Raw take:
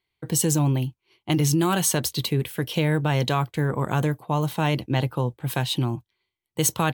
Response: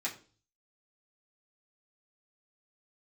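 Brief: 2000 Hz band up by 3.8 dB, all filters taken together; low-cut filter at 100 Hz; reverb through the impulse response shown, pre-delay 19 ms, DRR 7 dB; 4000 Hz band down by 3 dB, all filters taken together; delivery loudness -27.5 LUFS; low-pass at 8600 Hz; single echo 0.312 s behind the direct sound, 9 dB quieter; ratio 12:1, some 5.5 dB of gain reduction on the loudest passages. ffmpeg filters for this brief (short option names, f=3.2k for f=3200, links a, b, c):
-filter_complex "[0:a]highpass=100,lowpass=8.6k,equalizer=f=2k:t=o:g=6.5,equalizer=f=4k:t=o:g=-6.5,acompressor=threshold=-22dB:ratio=12,aecho=1:1:312:0.355,asplit=2[a][b];[1:a]atrim=start_sample=2205,adelay=19[c];[b][c]afir=irnorm=-1:irlink=0,volume=-10.5dB[d];[a][d]amix=inputs=2:normalize=0,volume=0.5dB"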